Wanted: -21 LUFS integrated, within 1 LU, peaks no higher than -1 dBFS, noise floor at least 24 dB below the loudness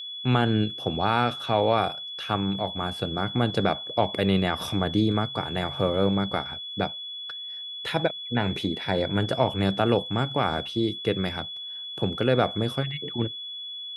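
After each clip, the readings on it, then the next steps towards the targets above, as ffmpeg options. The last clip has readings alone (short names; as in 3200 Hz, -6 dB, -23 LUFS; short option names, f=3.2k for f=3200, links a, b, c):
steady tone 3400 Hz; tone level -34 dBFS; loudness -26.5 LUFS; peak -7.0 dBFS; loudness target -21.0 LUFS
-> -af "bandreject=f=3.4k:w=30"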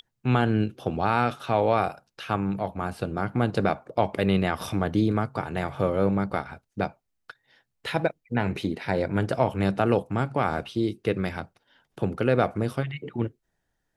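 steady tone none; loudness -26.5 LUFS; peak -7.5 dBFS; loudness target -21.0 LUFS
-> -af "volume=5.5dB"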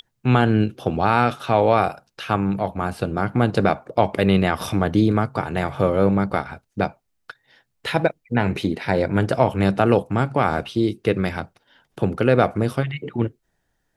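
loudness -21.0 LUFS; peak -2.0 dBFS; noise floor -72 dBFS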